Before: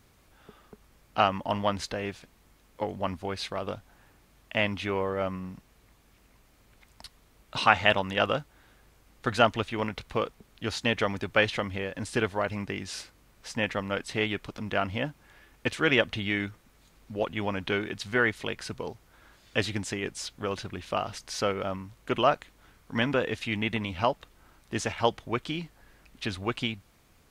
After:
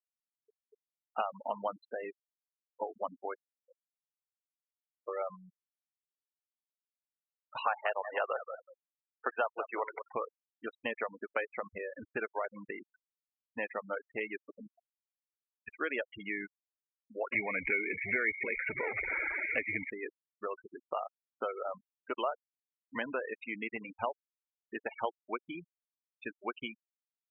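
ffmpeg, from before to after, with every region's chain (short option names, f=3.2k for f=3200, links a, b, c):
-filter_complex "[0:a]asettb=1/sr,asplit=3[a][b][c];[a]atrim=end=3.374[d];[b]atrim=start=3.37:end=5.08,asetpts=PTS-STARTPTS,afade=t=in:d=0.004:c=qsin,afade=t=out:st=1.706:d=0.004:c=qsin,acompressor=threshold=-40dB:ratio=12:attack=3.2:release=140:knee=1:detection=peak,asplit=3[e][f][g];[e]bandpass=f=530:t=q:w=8,volume=0dB[h];[f]bandpass=f=1.84k:t=q:w=8,volume=-6dB[i];[g]bandpass=f=2.48k:t=q:w=8,volume=-9dB[j];[h][i][j]amix=inputs=3:normalize=0[k];[c]atrim=start=5.076[l];[d][k]acrossfade=d=0.004:c1=hsin:c2=qsin[m];[m][l]acrossfade=d=0.004:c1=qsin:c2=hsin,asettb=1/sr,asplit=3[n][o][p];[n]atrim=end=7.644[q];[o]atrim=start=7.64:end=10.15,asetpts=PTS-STARTPTS,afade=t=in:d=0.004:c=qsin,afade=t=out:st=2.506:d=0.004:c=qsin,highpass=380,lowpass=2.4k,acontrast=65,aecho=1:1:183|366|549:0.2|0.0499|0.0125,atrim=end_sample=110691[r];[p]atrim=start=10.146[s];[q][r]acrossfade=d=0.004:c1=hsin:c2=qsin[t];[t][s]acrossfade=d=0.004:c1=qsin:c2=hsin,asettb=1/sr,asplit=3[u][v][w];[u]atrim=end=14.674[x];[v]atrim=start=14.67:end=15.68,asetpts=PTS-STARTPTS,afade=t=in:d=0.004:c=qsin,afade=t=out:st=1.006:d=0.004:c=qsin,acompressor=threshold=-41dB:ratio=16:attack=3.2:release=140:knee=1:detection=peak,aeval=exprs='(tanh(31.6*val(0)+0.45)-tanh(0.45))/31.6':c=same[y];[w]atrim=start=15.676[z];[x][y]acrossfade=d=0.004:c1=hsin:c2=qsin[aa];[aa][z]acrossfade=d=0.004:c1=qsin:c2=hsin,asettb=1/sr,asplit=3[ab][ac][ad];[ab]atrim=end=17.324[ae];[ac]atrim=start=17.32:end=19.9,asetpts=PTS-STARTPTS,afade=t=in:d=0.004:c=qsin,afade=t=out:st=2.576:d=0.004:c=qsin,aeval=exprs='val(0)+0.5*0.0562*sgn(val(0))':c=same,lowpass=f=2.2k:t=q:w=14[af];[ad]atrim=start=19.896[ag];[ae][af]acrossfade=d=0.004:c1=hsin:c2=qsin[ah];[ah][ag]acrossfade=d=0.004:c1=qsin:c2=hsin,bass=f=250:g=-15,treble=f=4k:g=-4,acrossover=split=640|2700[ai][aj][ak];[ai]acompressor=threshold=-36dB:ratio=4[al];[aj]acompressor=threshold=-32dB:ratio=4[am];[ak]acompressor=threshold=-51dB:ratio=4[an];[al][am][an]amix=inputs=3:normalize=0,afftfilt=real='re*gte(hypot(re,im),0.0355)':imag='im*gte(hypot(re,im),0.0355)':win_size=1024:overlap=0.75,volume=-2dB"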